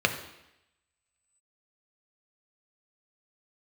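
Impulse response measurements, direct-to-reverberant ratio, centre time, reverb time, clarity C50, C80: 5.0 dB, 14 ms, 0.85 s, 10.0 dB, 12.0 dB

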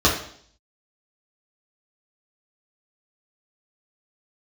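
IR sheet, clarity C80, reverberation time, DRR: 10.0 dB, 0.60 s, -5.5 dB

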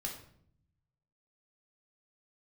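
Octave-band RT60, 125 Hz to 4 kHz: 1.5 s, 1.1 s, 0.70 s, 0.55 s, 0.50 s, 0.45 s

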